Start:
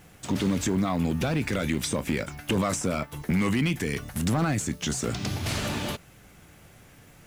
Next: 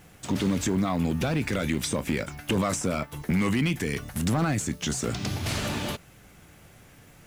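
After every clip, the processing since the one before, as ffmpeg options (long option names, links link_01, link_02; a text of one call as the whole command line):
ffmpeg -i in.wav -af anull out.wav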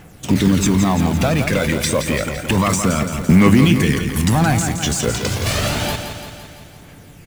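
ffmpeg -i in.wav -filter_complex "[0:a]asplit=2[link_01][link_02];[link_02]acrusher=bits=4:mix=0:aa=0.000001,volume=-9dB[link_03];[link_01][link_03]amix=inputs=2:normalize=0,aphaser=in_gain=1:out_gain=1:delay=2.1:decay=0.47:speed=0.29:type=triangular,aecho=1:1:170|340|510|680|850|1020|1190|1360:0.398|0.239|0.143|0.086|0.0516|0.031|0.0186|0.0111,volume=5.5dB" out.wav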